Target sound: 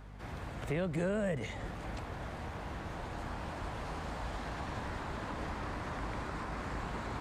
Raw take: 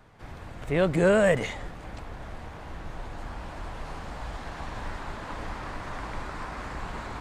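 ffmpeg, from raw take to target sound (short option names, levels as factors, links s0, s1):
-filter_complex "[0:a]highpass=56,acrossover=split=200|510[s0][s1][s2];[s0]acompressor=threshold=0.0126:ratio=4[s3];[s1]acompressor=threshold=0.00891:ratio=4[s4];[s2]acompressor=threshold=0.00891:ratio=4[s5];[s3][s4][s5]amix=inputs=3:normalize=0,aeval=exprs='val(0)+0.00355*(sin(2*PI*50*n/s)+sin(2*PI*2*50*n/s)/2+sin(2*PI*3*50*n/s)/3+sin(2*PI*4*50*n/s)/4+sin(2*PI*5*50*n/s)/5)':c=same"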